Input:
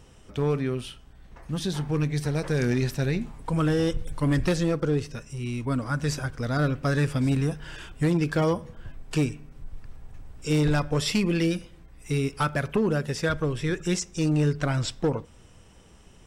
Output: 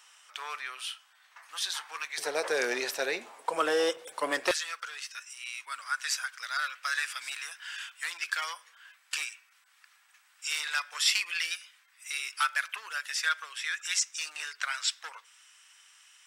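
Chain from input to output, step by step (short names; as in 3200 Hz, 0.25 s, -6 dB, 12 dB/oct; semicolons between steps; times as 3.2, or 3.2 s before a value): HPF 1100 Hz 24 dB/oct, from 2.18 s 500 Hz, from 4.51 s 1400 Hz; gain +4 dB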